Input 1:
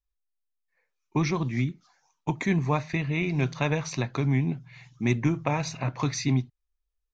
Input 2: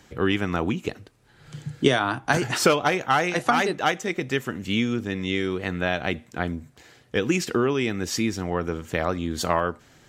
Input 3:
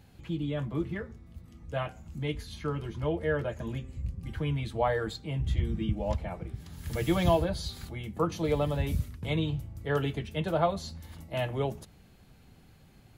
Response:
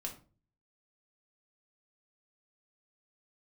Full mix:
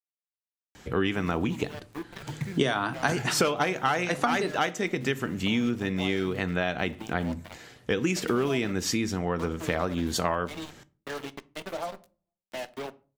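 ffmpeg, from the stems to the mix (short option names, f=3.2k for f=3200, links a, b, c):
-filter_complex "[0:a]adynamicsmooth=sensitivity=6:basefreq=630,volume=-8.5dB[a];[1:a]adelay=750,volume=1.5dB,asplit=2[b][c];[c]volume=-8.5dB[d];[2:a]highpass=f=220:w=0.5412,highpass=f=220:w=1.3066,acrusher=bits=4:mix=0:aa=0.5,bandreject=f=460:w=12,adelay=1200,volume=-1.5dB,asplit=2[e][f];[f]volume=-13dB[g];[a][e]amix=inputs=2:normalize=0,acrusher=bits=7:mix=0:aa=0.000001,acompressor=threshold=-36dB:ratio=3,volume=0dB[h];[3:a]atrim=start_sample=2205[i];[d][g]amix=inputs=2:normalize=0[j];[j][i]afir=irnorm=-1:irlink=0[k];[b][h][k]amix=inputs=3:normalize=0,acompressor=threshold=-28dB:ratio=2"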